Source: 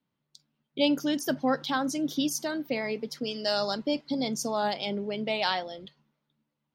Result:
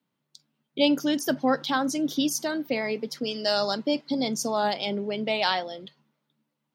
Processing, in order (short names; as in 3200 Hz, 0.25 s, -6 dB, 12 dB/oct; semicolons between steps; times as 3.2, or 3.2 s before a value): HPF 140 Hz; gain +3 dB